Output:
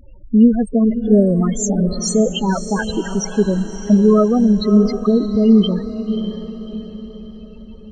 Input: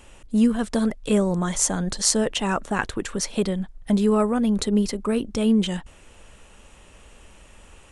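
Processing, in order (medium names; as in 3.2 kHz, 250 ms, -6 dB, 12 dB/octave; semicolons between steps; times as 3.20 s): loudest bins only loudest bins 8; 2.26–3.01 s: resonant high shelf 3.5 kHz +12 dB, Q 3; echo that smears into a reverb 595 ms, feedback 46%, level -10 dB; trim +8 dB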